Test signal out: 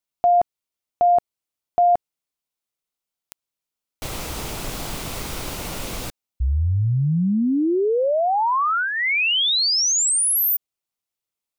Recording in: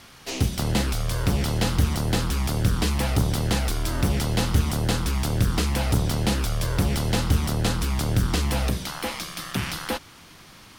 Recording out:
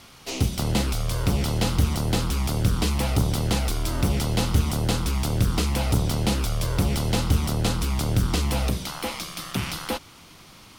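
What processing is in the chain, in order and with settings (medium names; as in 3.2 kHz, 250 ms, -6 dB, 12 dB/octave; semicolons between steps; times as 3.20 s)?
peaking EQ 1.7 kHz -6.5 dB 0.3 oct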